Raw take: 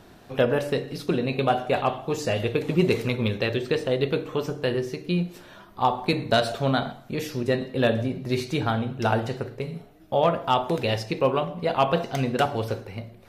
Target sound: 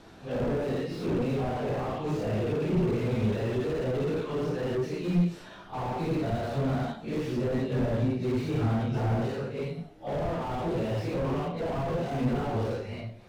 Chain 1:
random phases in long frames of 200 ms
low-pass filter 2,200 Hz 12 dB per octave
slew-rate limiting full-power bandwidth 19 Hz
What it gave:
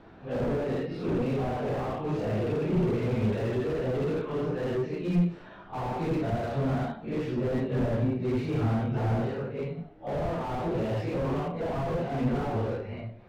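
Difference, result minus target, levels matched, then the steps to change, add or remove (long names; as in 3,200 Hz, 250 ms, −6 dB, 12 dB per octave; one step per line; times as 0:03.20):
8,000 Hz band −4.5 dB
change: low-pass filter 8,200 Hz 12 dB per octave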